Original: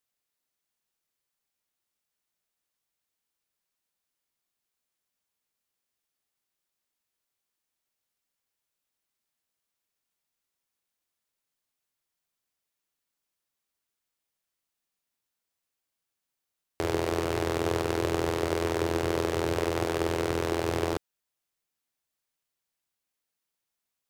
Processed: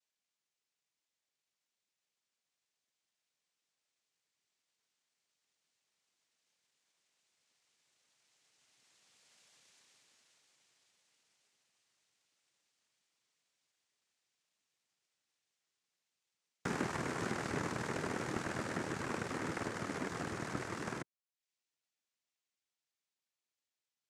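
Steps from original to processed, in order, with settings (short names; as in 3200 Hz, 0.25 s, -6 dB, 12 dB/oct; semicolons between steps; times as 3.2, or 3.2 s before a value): Doppler pass-by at 9.57, 16 m/s, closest 9.3 m; in parallel at +0.5 dB: limiter -53.5 dBFS, peak gain reduction 19 dB; on the sum: reverb removal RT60 0.51 s; noise vocoder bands 3; gain +13 dB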